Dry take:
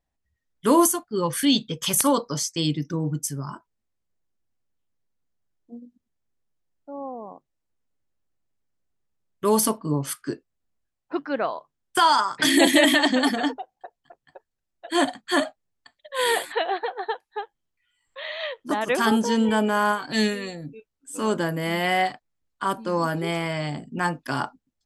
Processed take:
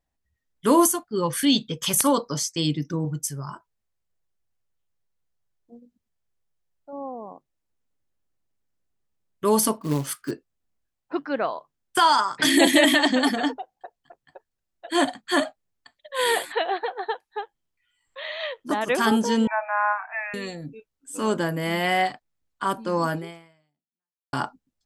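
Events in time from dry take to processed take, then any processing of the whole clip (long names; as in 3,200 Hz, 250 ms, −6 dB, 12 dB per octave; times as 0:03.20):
0:03.05–0:06.93: parametric band 260 Hz −8.5 dB 0.76 octaves
0:09.81–0:10.31: floating-point word with a short mantissa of 2 bits
0:19.47–0:20.34: linear-phase brick-wall band-pass 620–2,700 Hz
0:23.14–0:24.33: fade out exponential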